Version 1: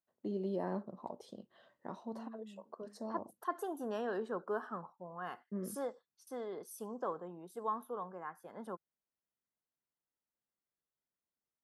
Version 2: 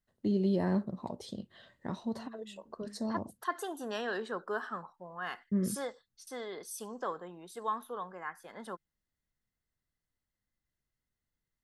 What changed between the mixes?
first voice: remove meter weighting curve A
master: add octave-band graphic EQ 2,000/4,000/8,000 Hz +10/+11/+9 dB

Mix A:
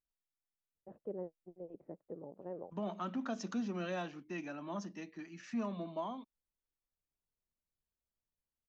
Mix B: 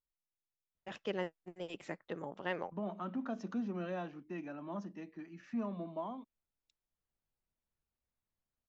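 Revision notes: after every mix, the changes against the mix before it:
first voice: remove transistor ladder low-pass 700 Hz, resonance 25%
master: add low-pass filter 1,400 Hz 6 dB per octave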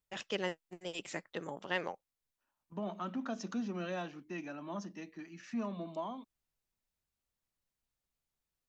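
first voice: entry −0.75 s
master: remove low-pass filter 1,400 Hz 6 dB per octave

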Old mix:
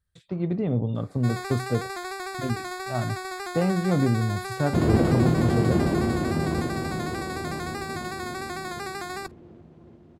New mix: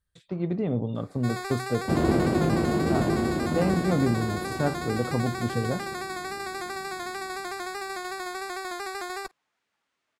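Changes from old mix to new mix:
second sound: entry −2.85 s
master: add parametric band 96 Hz −5.5 dB 1.4 octaves

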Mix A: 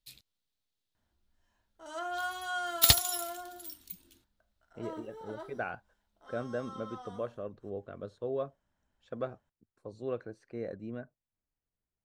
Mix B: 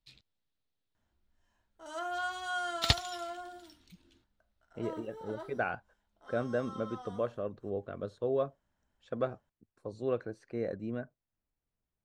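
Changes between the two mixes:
speech +3.5 dB
second sound: add high-frequency loss of the air 140 metres

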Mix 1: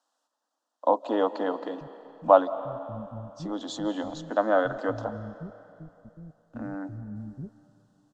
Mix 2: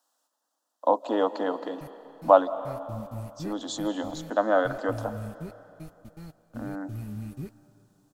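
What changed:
speech: remove high-frequency loss of the air 67 metres
background: remove Chebyshev low-pass with heavy ripple 760 Hz, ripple 6 dB

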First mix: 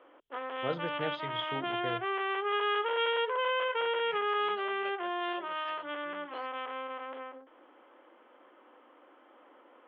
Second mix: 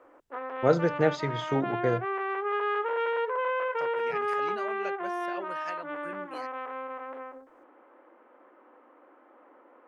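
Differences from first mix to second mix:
background −10.0 dB
master: remove transistor ladder low-pass 3,400 Hz, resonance 80%

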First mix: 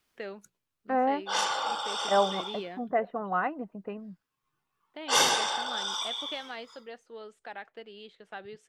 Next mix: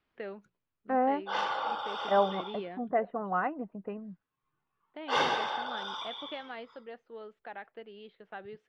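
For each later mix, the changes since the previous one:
master: add high-frequency loss of the air 340 metres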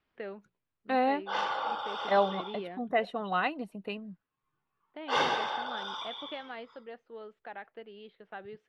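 second voice: remove low-pass filter 1,600 Hz 24 dB per octave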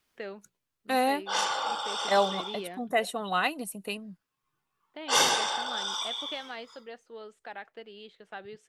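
master: remove high-frequency loss of the air 340 metres

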